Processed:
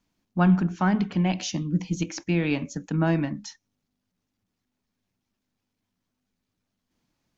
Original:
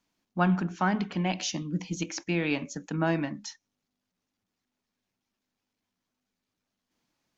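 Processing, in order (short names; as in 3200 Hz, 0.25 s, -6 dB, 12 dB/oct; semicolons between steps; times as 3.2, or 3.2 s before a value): low shelf 210 Hz +11 dB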